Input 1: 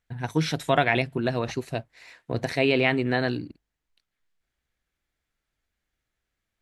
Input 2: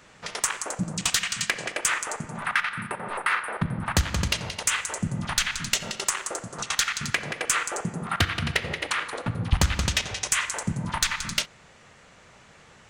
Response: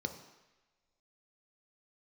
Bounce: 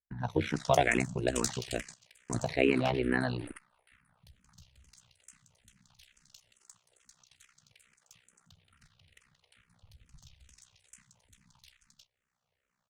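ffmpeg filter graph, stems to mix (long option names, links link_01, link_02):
-filter_complex "[0:a]agate=range=-19dB:threshold=-44dB:ratio=16:detection=peak,aemphasis=mode=reproduction:type=50fm,volume=1.5dB,asplit=2[link_01][link_02];[1:a]equalizer=frequency=310:width=4.3:gain=-12,acrossover=split=130|3000[link_03][link_04][link_05];[link_04]acompressor=threshold=-48dB:ratio=2[link_06];[link_03][link_06][link_05]amix=inputs=3:normalize=0,adelay=300,volume=-4dB,asplit=2[link_07][link_08];[link_08]volume=-22dB[link_09];[link_02]apad=whole_len=581727[link_10];[link_07][link_10]sidechaingate=range=-26dB:threshold=-43dB:ratio=16:detection=peak[link_11];[link_09]aecho=0:1:311:1[link_12];[link_01][link_11][link_12]amix=inputs=3:normalize=0,tremolo=f=63:d=0.857,asplit=2[link_13][link_14];[link_14]afreqshift=-2.3[link_15];[link_13][link_15]amix=inputs=2:normalize=1"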